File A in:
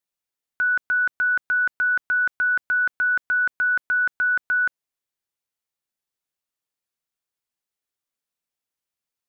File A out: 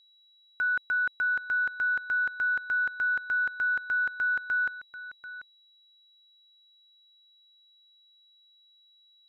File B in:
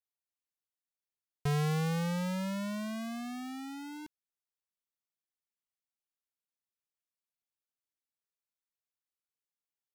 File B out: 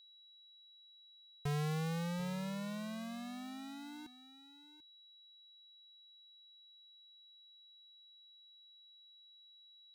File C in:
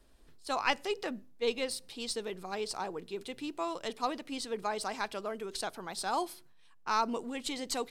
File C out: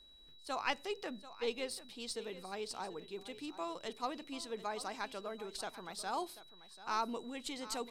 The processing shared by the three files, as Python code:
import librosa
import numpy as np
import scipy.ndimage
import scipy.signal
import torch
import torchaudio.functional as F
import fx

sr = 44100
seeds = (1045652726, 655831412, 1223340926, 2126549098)

y = x + 10.0 ** (-15.0 / 20.0) * np.pad(x, (int(739 * sr / 1000.0), 0))[:len(x)]
y = y + 10.0 ** (-53.0 / 20.0) * np.sin(2.0 * np.pi * 3900.0 * np.arange(len(y)) / sr)
y = y * 10.0 ** (-6.0 / 20.0)